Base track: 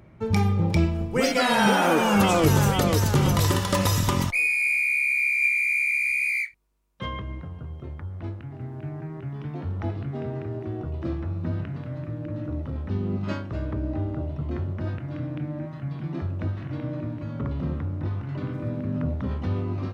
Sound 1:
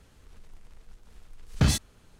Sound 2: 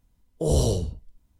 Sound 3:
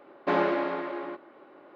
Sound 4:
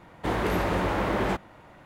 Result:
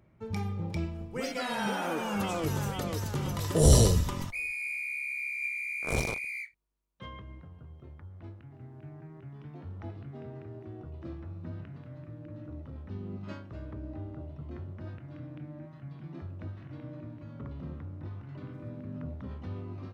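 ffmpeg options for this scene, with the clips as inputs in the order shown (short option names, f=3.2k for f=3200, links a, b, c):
-filter_complex "[2:a]asplit=2[a][b];[0:a]volume=-12dB[c];[a]bass=f=250:g=4,treble=f=4k:g=8[d];[b]acrusher=bits=2:mix=0:aa=0.5[e];[d]atrim=end=1.39,asetpts=PTS-STARTPTS,volume=-1dB,afade=t=in:d=0.004:c=hsin,afade=t=out:st=1.386:d=0.004:c=hsin,adelay=3140[f];[e]atrim=end=1.39,asetpts=PTS-STARTPTS,volume=-9.5dB,afade=t=in:d=0.004:c=hsin,afade=t=out:st=1.386:d=0.004:c=hsin,adelay=238581S[g];[c][f][g]amix=inputs=3:normalize=0"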